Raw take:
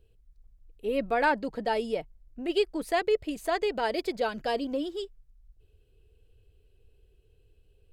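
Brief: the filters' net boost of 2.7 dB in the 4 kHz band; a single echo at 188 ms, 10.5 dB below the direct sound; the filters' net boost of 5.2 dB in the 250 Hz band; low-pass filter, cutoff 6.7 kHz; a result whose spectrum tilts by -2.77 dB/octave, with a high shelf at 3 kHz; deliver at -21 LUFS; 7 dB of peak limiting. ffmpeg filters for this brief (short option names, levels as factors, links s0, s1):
-af "lowpass=6700,equalizer=f=250:t=o:g=6.5,highshelf=f=3000:g=-5,equalizer=f=4000:t=o:g=8,alimiter=limit=0.112:level=0:latency=1,aecho=1:1:188:0.299,volume=2.66"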